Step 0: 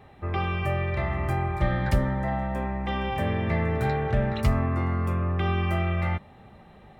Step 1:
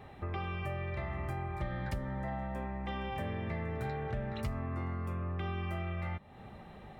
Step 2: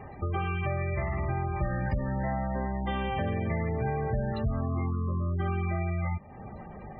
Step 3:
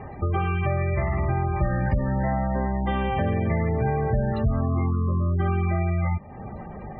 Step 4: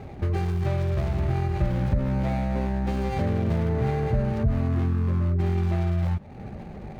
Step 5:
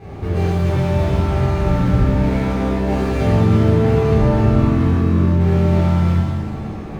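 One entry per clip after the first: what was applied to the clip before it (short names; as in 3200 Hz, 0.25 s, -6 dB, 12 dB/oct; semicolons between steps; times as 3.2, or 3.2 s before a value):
compressor 3:1, threshold -38 dBFS, peak gain reduction 16 dB
spectral gate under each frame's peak -20 dB strong; gain +7.5 dB
air absorption 260 m; gain +6.5 dB
median filter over 41 samples
shimmer reverb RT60 1.4 s, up +7 st, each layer -8 dB, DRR -11 dB; gain -3 dB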